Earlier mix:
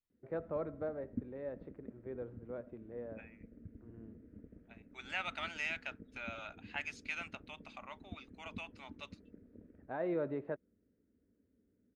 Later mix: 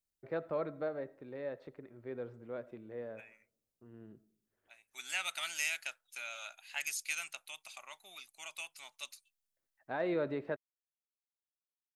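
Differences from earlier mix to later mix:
second voice -7.0 dB; background: muted; master: remove tape spacing loss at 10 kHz 39 dB

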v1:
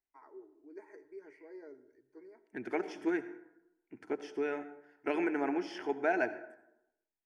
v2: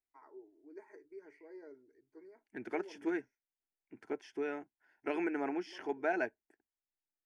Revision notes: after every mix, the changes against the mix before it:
reverb: off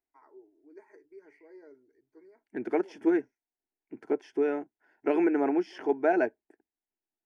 second voice: add bell 390 Hz +11 dB 3 oct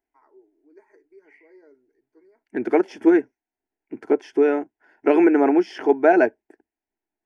second voice +9.5 dB; master: add bell 150 Hz -8.5 dB 0.32 oct

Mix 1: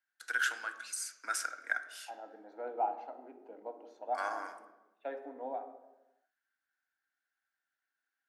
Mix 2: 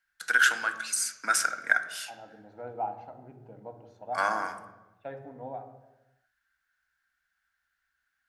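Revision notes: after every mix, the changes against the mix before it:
first voice +10.0 dB; master: remove steep high-pass 260 Hz 48 dB/oct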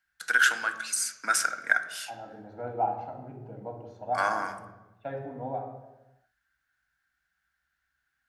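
second voice: send +8.0 dB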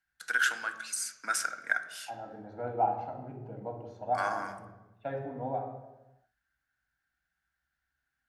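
first voice -5.5 dB

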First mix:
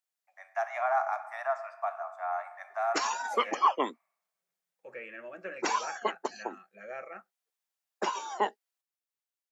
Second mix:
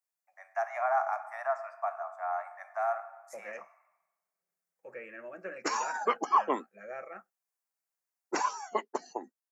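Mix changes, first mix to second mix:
background: entry +2.70 s; master: add bell 3400 Hz -12 dB 0.72 oct

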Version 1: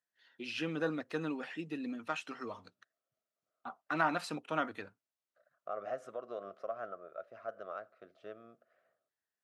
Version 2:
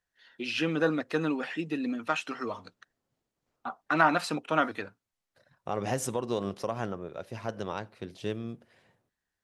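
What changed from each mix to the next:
first voice +8.0 dB; second voice: remove double band-pass 910 Hz, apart 0.98 oct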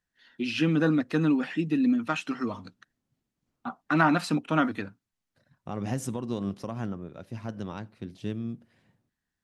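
second voice -4.5 dB; master: add resonant low shelf 340 Hz +7.5 dB, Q 1.5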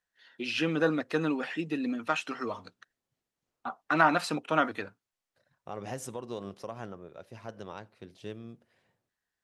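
second voice -3.0 dB; master: add resonant low shelf 340 Hz -7.5 dB, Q 1.5

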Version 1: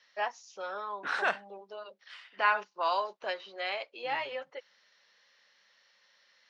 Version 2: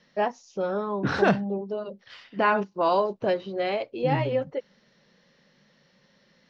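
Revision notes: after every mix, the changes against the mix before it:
second voice: add synth low-pass 5500 Hz, resonance Q 2.3; master: remove HPF 1100 Hz 12 dB/oct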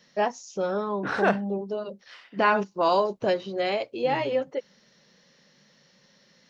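second voice: add three-band isolator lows -14 dB, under 340 Hz, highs -14 dB, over 2700 Hz; master: remove air absorption 150 m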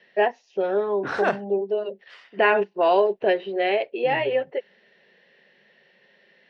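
first voice: add speaker cabinet 250–3400 Hz, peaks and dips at 280 Hz -6 dB, 400 Hz +10 dB, 700 Hz +6 dB, 1200 Hz -8 dB, 1800 Hz +9 dB, 2700 Hz +7 dB

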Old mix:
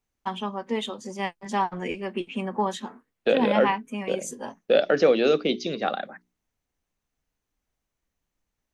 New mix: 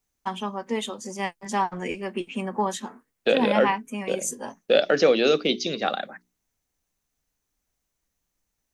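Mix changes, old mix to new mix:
first voice: add bell 3600 Hz -6 dB 0.96 oct; master: add high shelf 3200 Hz +9.5 dB

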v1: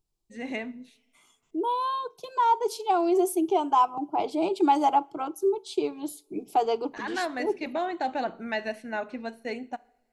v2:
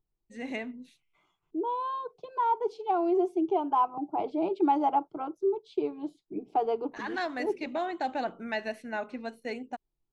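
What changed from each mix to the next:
second voice: add tape spacing loss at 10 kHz 34 dB; reverb: off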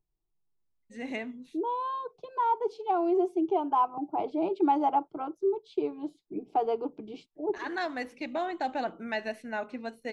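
first voice: entry +0.60 s

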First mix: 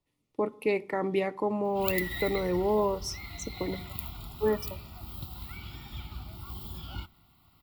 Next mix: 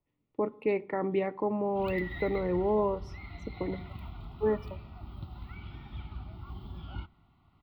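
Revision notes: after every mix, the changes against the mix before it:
master: add air absorption 420 m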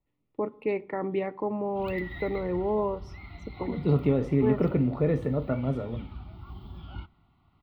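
second voice: unmuted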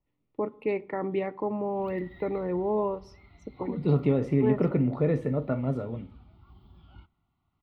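background -11.5 dB

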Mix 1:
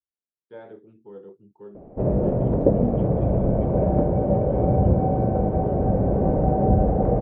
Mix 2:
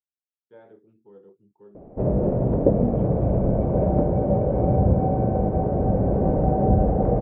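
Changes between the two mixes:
speech -7.0 dB; master: add air absorption 110 m

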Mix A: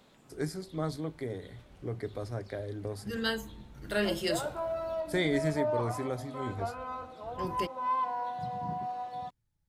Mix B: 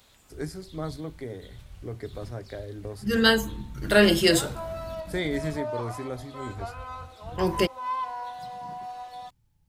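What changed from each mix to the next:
second voice +12.0 dB; background: add tilt +3.5 dB/oct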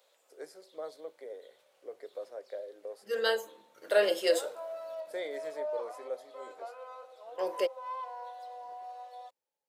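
master: add ladder high-pass 480 Hz, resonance 70%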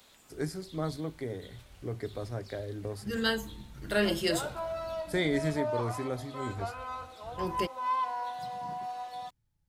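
second voice -9.5 dB; master: remove ladder high-pass 480 Hz, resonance 70%

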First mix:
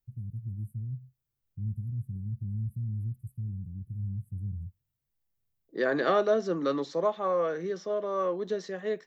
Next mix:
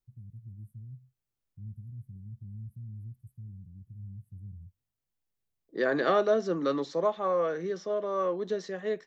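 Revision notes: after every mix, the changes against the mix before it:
first voice -9.0 dB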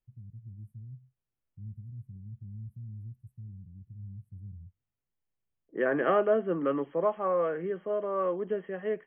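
second voice: add brick-wall FIR low-pass 3300 Hz; master: add high shelf 4800 Hz -9 dB

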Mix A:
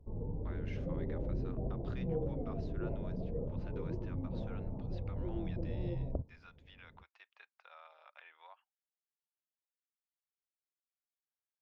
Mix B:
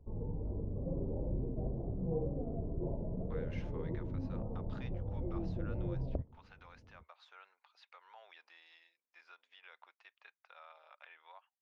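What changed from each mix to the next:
speech: entry +2.85 s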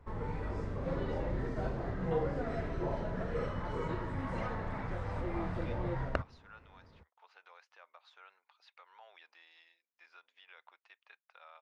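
speech: entry +0.85 s; background: remove Gaussian blur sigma 15 samples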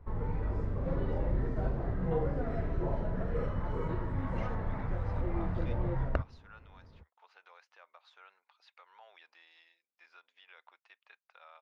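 background: add high shelf 2700 Hz -10.5 dB; master: add low shelf 110 Hz +8 dB

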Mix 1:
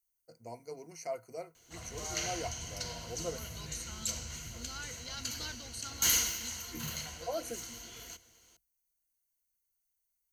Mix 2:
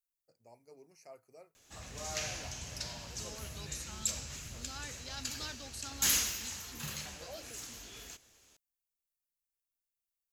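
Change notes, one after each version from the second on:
first voice -12.0 dB; master: remove ripple EQ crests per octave 1.9, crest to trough 10 dB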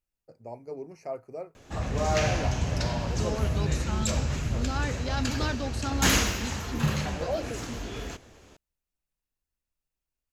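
master: remove pre-emphasis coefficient 0.9

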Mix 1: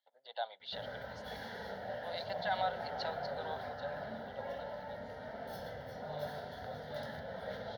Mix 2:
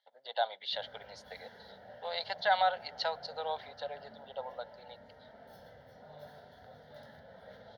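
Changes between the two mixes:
speech +7.5 dB; background -10.0 dB

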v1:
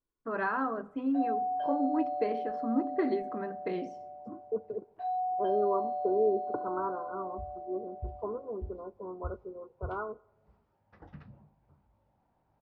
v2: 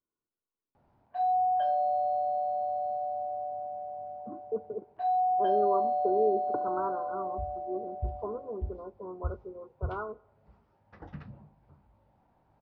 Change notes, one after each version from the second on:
first voice: muted; background +5.5 dB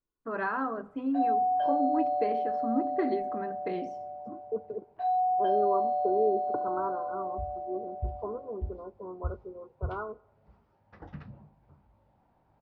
first voice: unmuted

